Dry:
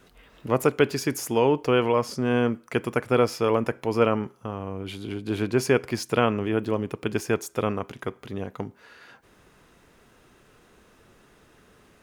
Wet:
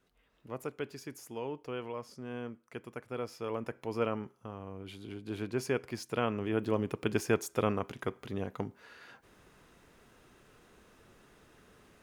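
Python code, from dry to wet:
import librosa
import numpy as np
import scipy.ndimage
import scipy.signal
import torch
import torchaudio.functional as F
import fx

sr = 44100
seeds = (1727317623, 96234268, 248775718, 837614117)

y = fx.gain(x, sr, db=fx.line((3.13, -18.0), (3.84, -11.0), (6.12, -11.0), (6.8, -4.0)))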